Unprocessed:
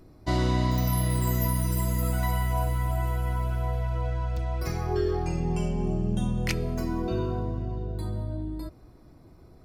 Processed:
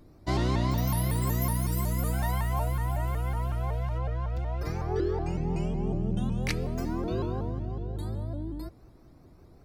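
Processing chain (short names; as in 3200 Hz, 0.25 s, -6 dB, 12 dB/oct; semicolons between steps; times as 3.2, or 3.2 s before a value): 3.98–6.32 high shelf 4500 Hz -9 dB; shaped vibrato saw up 5.4 Hz, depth 160 cents; gain -2 dB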